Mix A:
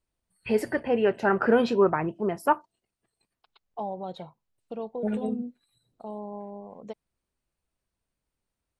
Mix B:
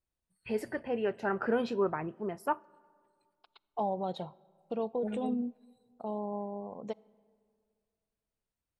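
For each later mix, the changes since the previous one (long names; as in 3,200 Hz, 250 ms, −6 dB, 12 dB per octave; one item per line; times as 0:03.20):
first voice −9.5 dB
reverb: on, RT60 2.1 s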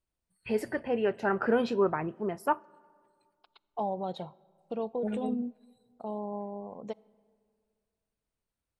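first voice +3.5 dB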